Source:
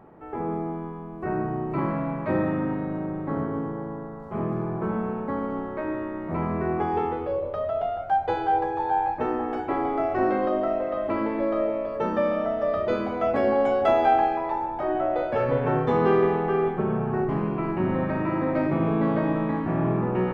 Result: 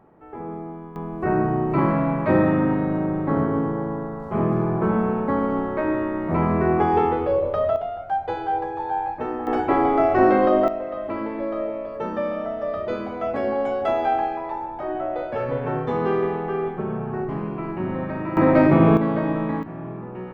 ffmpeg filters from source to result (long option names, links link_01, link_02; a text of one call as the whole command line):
ffmpeg -i in.wav -af "asetnsamples=nb_out_samples=441:pad=0,asendcmd='0.96 volume volume 6.5dB;7.76 volume volume -1.5dB;9.47 volume volume 7dB;10.68 volume volume -2dB;18.37 volume volume 9dB;18.97 volume volume 1dB;19.63 volume volume -9.5dB',volume=-4dB" out.wav